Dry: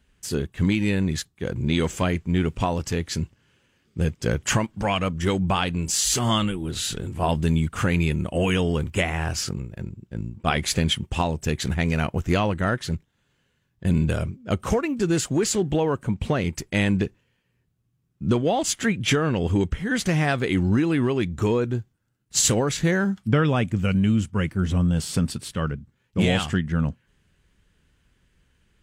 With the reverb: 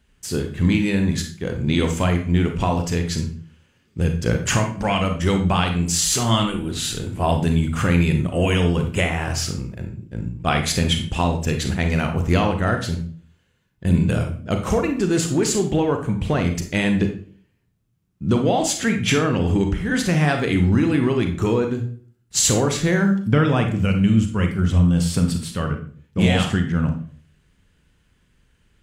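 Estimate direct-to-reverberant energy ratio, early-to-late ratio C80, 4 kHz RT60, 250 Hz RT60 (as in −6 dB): 4.5 dB, 12.5 dB, 0.35 s, 0.55 s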